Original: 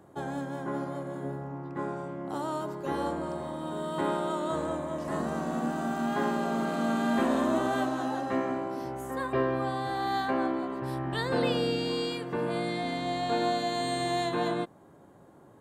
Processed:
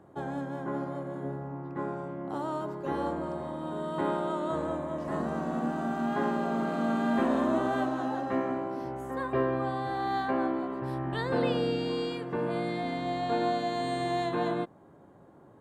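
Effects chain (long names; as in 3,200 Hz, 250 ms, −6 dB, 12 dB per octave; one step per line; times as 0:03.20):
high-shelf EQ 3,800 Hz −11 dB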